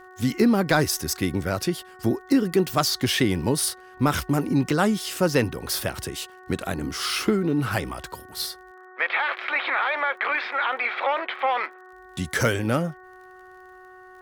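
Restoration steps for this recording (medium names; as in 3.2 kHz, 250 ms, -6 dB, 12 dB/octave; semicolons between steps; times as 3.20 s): de-click; de-hum 370 Hz, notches 5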